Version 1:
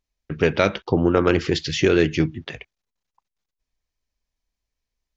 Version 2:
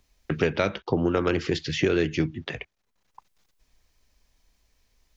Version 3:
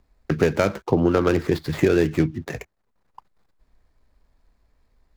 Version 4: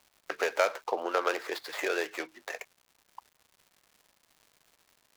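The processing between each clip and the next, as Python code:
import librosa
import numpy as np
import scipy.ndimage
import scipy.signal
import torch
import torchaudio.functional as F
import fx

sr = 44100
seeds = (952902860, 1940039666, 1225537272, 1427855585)

y1 = fx.band_squash(x, sr, depth_pct=70)
y1 = y1 * librosa.db_to_amplitude(-5.5)
y2 = scipy.signal.medfilt(y1, 15)
y2 = y2 * librosa.db_to_amplitude(5.0)
y3 = scipy.signal.sosfilt(scipy.signal.butter(4, 560.0, 'highpass', fs=sr, output='sos'), y2)
y3 = fx.dmg_crackle(y3, sr, seeds[0], per_s=240.0, level_db=-46.0)
y3 = y3 * librosa.db_to_amplitude(-2.5)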